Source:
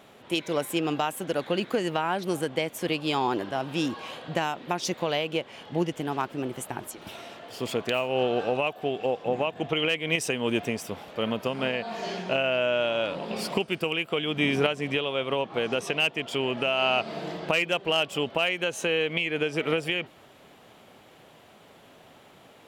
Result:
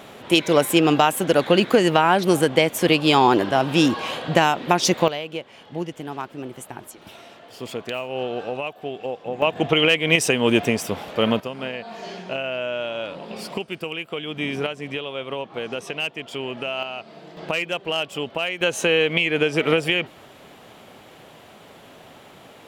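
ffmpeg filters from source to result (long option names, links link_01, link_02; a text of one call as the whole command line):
ffmpeg -i in.wav -af "asetnsamples=nb_out_samples=441:pad=0,asendcmd='5.08 volume volume -2dB;9.42 volume volume 8.5dB;11.4 volume volume -2dB;16.83 volume volume -8.5dB;17.37 volume volume 0dB;18.61 volume volume 7dB',volume=10.5dB" out.wav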